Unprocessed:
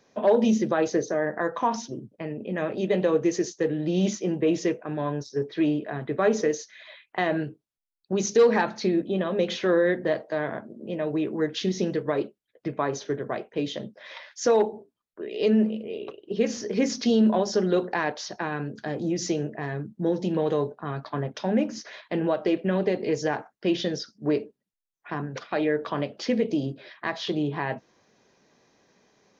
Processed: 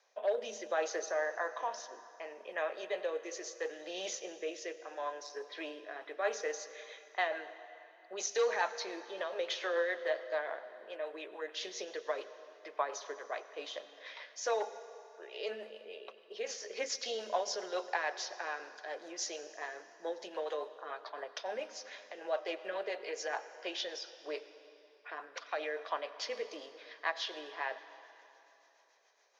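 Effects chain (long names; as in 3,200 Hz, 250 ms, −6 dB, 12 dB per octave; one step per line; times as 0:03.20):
high-pass filter 590 Hz 24 dB per octave
0:21.74–0:22.25: downward compressor 2 to 1, threshold −41 dBFS, peak gain reduction 6.5 dB
rotating-speaker cabinet horn 0.7 Hz, later 7 Hz, at 0:05.66
on a send: convolution reverb RT60 3.1 s, pre-delay 84 ms, DRR 13 dB
on the sum: level −3 dB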